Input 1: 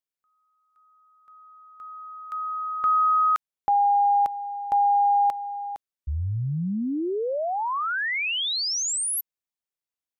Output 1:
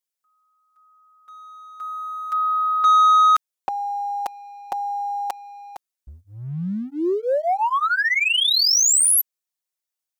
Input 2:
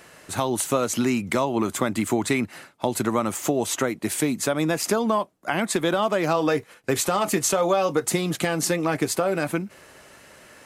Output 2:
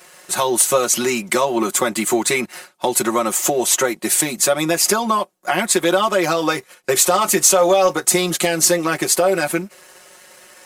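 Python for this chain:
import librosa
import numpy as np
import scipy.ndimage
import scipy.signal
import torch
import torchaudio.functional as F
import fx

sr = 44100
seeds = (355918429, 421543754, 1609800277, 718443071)

y = fx.bass_treble(x, sr, bass_db=-11, treble_db=6)
y = y + 0.98 * np.pad(y, (int(5.5 * sr / 1000.0), 0))[:len(y)]
y = fx.leveller(y, sr, passes=1)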